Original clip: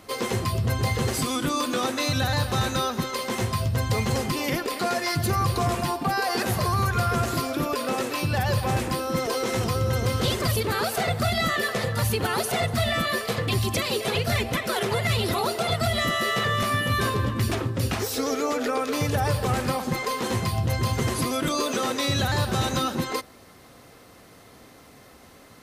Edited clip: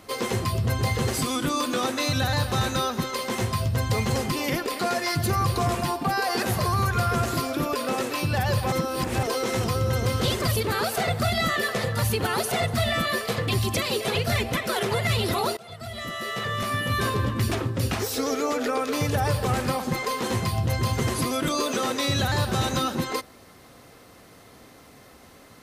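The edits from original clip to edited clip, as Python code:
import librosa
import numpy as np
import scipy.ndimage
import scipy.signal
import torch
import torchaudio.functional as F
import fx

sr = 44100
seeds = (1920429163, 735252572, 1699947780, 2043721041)

y = fx.edit(x, sr, fx.reverse_span(start_s=8.72, length_s=0.51),
    fx.fade_in_from(start_s=15.57, length_s=1.61, floor_db=-23.0), tone=tone)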